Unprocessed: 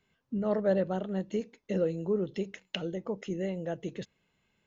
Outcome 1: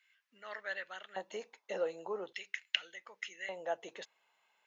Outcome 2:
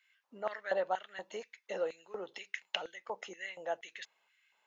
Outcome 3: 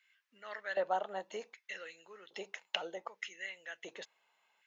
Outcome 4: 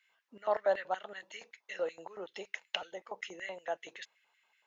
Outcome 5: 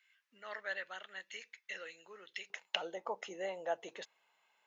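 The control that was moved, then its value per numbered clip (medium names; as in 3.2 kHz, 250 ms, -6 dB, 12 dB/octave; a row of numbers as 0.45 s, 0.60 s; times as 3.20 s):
LFO high-pass, rate: 0.43 Hz, 2.1 Hz, 0.65 Hz, 5.3 Hz, 0.2 Hz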